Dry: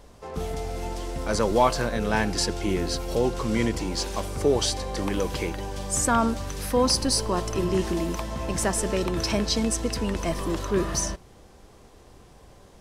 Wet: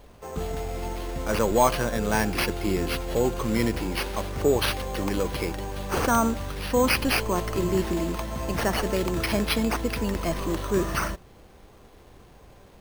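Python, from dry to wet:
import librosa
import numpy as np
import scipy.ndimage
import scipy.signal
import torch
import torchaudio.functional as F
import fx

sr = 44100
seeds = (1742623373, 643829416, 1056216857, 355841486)

y = np.repeat(x[::6], 6)[:len(x)]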